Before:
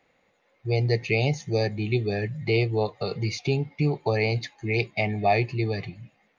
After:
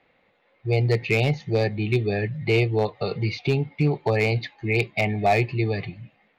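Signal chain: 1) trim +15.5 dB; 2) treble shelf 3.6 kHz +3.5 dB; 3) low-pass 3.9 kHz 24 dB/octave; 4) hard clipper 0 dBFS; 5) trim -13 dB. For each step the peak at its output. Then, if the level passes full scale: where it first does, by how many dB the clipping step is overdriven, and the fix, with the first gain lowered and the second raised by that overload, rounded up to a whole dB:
+5.0 dBFS, +5.5 dBFS, +5.5 dBFS, 0.0 dBFS, -13.0 dBFS; step 1, 5.5 dB; step 1 +9.5 dB, step 5 -7 dB

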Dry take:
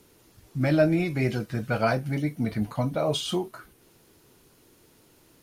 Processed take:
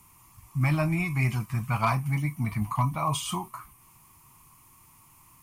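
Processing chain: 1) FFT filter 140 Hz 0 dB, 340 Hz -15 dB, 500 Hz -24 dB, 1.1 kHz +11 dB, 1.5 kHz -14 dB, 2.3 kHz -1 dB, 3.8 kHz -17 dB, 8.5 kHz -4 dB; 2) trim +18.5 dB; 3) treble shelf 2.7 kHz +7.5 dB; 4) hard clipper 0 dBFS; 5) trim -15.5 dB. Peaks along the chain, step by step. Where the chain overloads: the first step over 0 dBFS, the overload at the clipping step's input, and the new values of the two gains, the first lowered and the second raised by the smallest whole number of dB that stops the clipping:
-15.5 dBFS, +3.0 dBFS, +4.0 dBFS, 0.0 dBFS, -15.5 dBFS; step 2, 4.0 dB; step 2 +14.5 dB, step 5 -11.5 dB

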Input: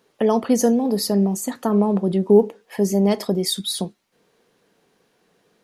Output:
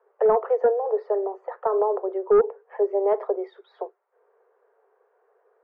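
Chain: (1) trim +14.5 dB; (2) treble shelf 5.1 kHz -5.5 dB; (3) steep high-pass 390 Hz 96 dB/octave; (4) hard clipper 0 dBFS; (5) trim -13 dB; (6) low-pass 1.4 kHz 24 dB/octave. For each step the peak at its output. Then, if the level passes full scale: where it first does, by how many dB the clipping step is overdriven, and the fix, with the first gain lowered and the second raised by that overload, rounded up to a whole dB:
+12.0 dBFS, +12.0 dBFS, +8.5 dBFS, 0.0 dBFS, -13.0 dBFS, -11.5 dBFS; step 1, 8.5 dB; step 1 +5.5 dB, step 5 -4 dB

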